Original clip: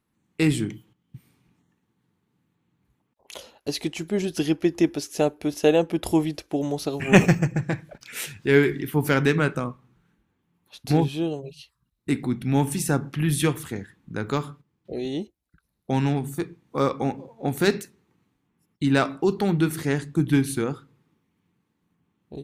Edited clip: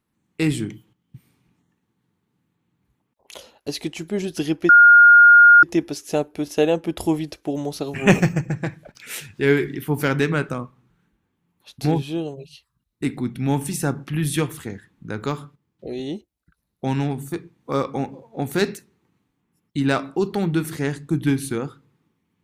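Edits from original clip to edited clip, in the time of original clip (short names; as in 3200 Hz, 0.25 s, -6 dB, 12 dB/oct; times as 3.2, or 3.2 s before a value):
4.69 add tone 1420 Hz -6 dBFS 0.94 s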